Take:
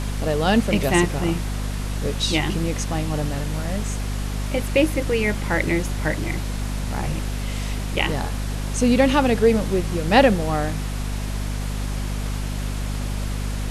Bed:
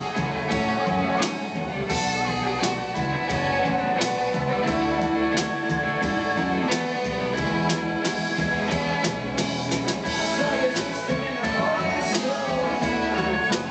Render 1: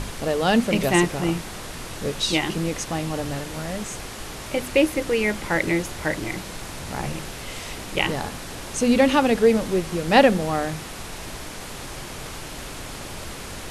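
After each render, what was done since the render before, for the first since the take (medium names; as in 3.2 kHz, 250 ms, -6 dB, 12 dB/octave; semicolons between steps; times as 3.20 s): hum notches 50/100/150/200/250 Hz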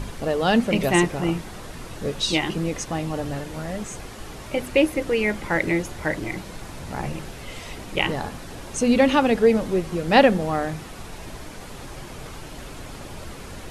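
noise reduction 7 dB, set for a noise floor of -36 dBFS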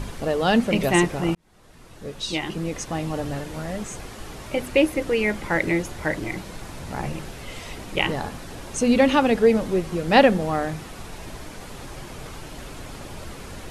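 1.35–3.08 s: fade in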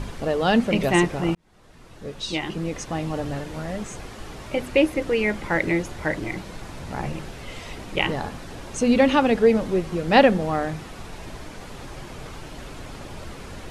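treble shelf 10 kHz -10.5 dB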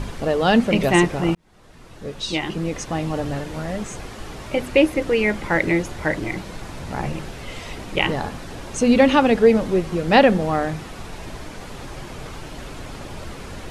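trim +3 dB; peak limiter -3 dBFS, peak gain reduction 2.5 dB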